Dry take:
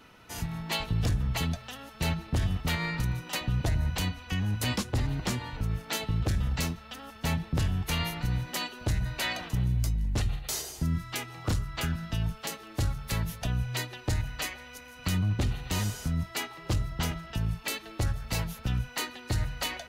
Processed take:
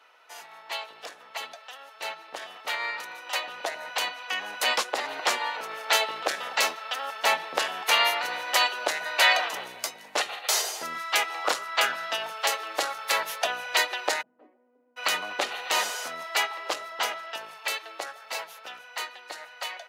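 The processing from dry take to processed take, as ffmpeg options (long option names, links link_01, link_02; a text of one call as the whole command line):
ffmpeg -i in.wav -filter_complex "[0:a]asplit=3[link_01][link_02][link_03];[link_01]afade=type=out:start_time=14.21:duration=0.02[link_04];[link_02]asuperpass=centerf=230:order=4:qfactor=1.9,afade=type=in:start_time=14.21:duration=0.02,afade=type=out:start_time=14.96:duration=0.02[link_05];[link_03]afade=type=in:start_time=14.96:duration=0.02[link_06];[link_04][link_05][link_06]amix=inputs=3:normalize=0,highpass=frequency=550:width=0.5412,highpass=frequency=550:width=1.3066,highshelf=frequency=5200:gain=-9.5,dynaudnorm=framelen=640:gausssize=13:maxgain=14dB" out.wav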